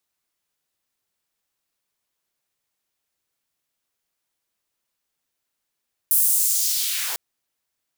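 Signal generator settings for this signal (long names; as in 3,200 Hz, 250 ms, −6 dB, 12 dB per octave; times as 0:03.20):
filter sweep on noise white, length 1.05 s highpass, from 11,000 Hz, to 340 Hz, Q 1.4, linear, gain ramp −11 dB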